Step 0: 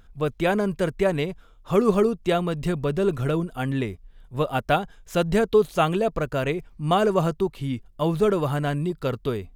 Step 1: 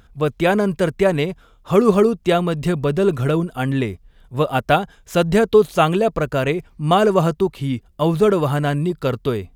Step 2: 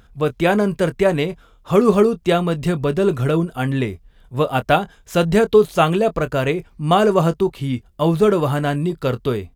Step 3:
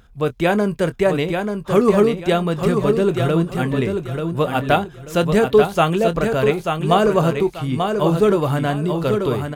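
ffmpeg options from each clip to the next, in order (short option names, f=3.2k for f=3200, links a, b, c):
-af "highpass=41,volume=5.5dB"
-filter_complex "[0:a]asplit=2[a][b];[b]adelay=24,volume=-13.5dB[c];[a][c]amix=inputs=2:normalize=0"
-af "aecho=1:1:887|1774|2661|3548:0.531|0.143|0.0387|0.0104,volume=-1dB"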